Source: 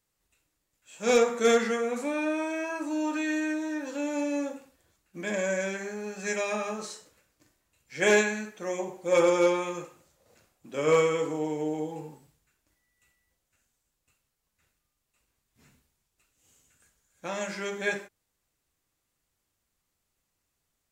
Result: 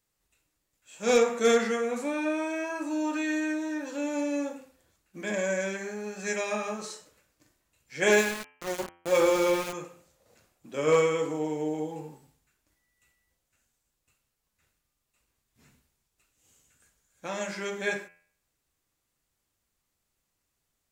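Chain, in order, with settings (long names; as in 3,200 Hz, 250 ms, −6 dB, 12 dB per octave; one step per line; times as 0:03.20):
0:08.12–0:09.73: centre clipping without the shift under −30.5 dBFS
hum removal 86.62 Hz, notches 37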